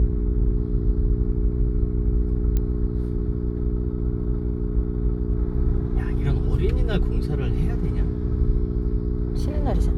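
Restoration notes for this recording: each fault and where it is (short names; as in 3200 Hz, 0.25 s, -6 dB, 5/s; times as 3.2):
hum 60 Hz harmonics 7 -27 dBFS
2.57 pop -13 dBFS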